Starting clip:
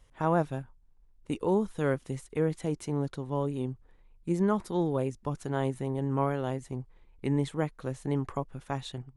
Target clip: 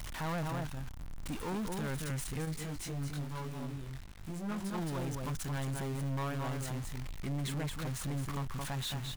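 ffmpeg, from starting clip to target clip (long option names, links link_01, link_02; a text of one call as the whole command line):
ffmpeg -i in.wav -filter_complex "[0:a]aeval=exprs='val(0)+0.5*0.0178*sgn(val(0))':channel_layout=same,equalizer=frequency=440:width=1.1:gain=-10.5,aecho=1:1:221:0.531,asoftclip=type=tanh:threshold=-32.5dB,asettb=1/sr,asplit=3[link_01][link_02][link_03];[link_01]atrim=end=2.454[link_04];[link_02]atrim=start=2.45:end=4.74,asetpts=PTS-STARTPTS,afade=type=in:duration=0.004:curve=qsin,afade=type=out:start_time=2.286:duration=0.004:curve=qsin,flanger=delay=19:depth=3:speed=1[link_05];[link_03]atrim=start=4.736[link_06];[link_04][link_05]acrossfade=duration=0.004:curve1=hsin:curve2=qsin[link_07];[link_07][link_06]acrossfade=duration=0.004:curve1=qsin:curve2=hsin" out.wav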